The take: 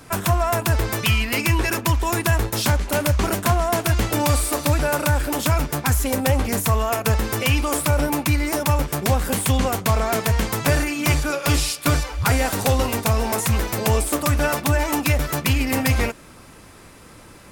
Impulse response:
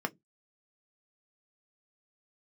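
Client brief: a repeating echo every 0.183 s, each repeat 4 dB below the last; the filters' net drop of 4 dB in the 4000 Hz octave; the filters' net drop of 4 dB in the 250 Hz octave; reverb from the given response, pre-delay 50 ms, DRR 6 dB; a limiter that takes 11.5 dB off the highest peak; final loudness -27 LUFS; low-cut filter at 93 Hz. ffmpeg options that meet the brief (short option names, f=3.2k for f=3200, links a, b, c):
-filter_complex "[0:a]highpass=93,equalizer=f=250:t=o:g=-5,equalizer=f=4k:t=o:g=-5.5,alimiter=limit=-19dB:level=0:latency=1,aecho=1:1:183|366|549|732|915|1098|1281|1464|1647:0.631|0.398|0.25|0.158|0.0994|0.0626|0.0394|0.0249|0.0157,asplit=2[a][b];[1:a]atrim=start_sample=2205,adelay=50[c];[b][c]afir=irnorm=-1:irlink=0,volume=-11.5dB[d];[a][d]amix=inputs=2:normalize=0,volume=-2dB"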